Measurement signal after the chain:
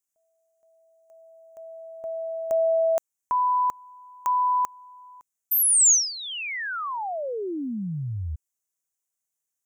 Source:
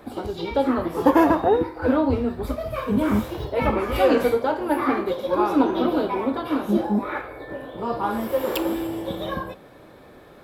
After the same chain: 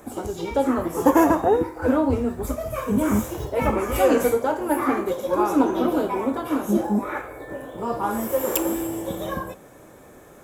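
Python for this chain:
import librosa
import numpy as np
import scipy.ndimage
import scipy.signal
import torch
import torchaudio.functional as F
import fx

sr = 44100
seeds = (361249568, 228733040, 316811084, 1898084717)

y = fx.high_shelf_res(x, sr, hz=5400.0, db=8.0, q=3.0)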